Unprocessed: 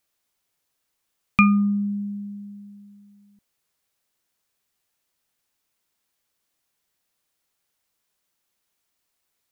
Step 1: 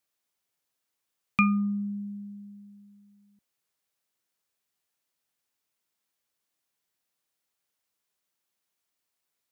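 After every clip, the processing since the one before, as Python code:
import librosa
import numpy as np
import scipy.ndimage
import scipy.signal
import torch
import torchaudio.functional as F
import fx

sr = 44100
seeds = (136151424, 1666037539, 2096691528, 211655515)

y = fx.highpass(x, sr, hz=93.0, slope=6)
y = F.gain(torch.from_numpy(y), -6.0).numpy()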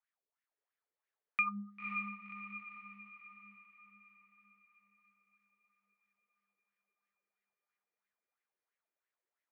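y = fx.wah_lfo(x, sr, hz=3.0, low_hz=400.0, high_hz=2000.0, q=5.1)
y = fx.echo_diffused(y, sr, ms=537, feedback_pct=51, wet_db=-4.5)
y = F.gain(torch.from_numpy(y), 3.0).numpy()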